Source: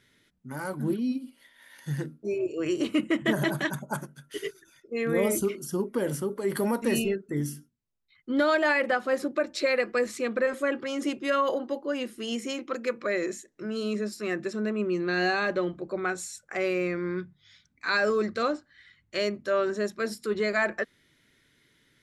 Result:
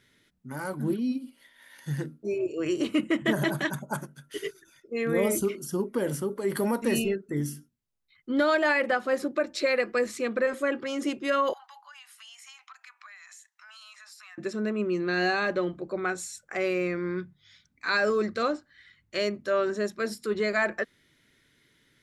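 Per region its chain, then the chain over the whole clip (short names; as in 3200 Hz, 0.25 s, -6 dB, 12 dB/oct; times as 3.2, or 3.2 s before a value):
11.53–14.38 steep high-pass 780 Hz 72 dB/oct + compressor, threshold -46 dBFS
whole clip: dry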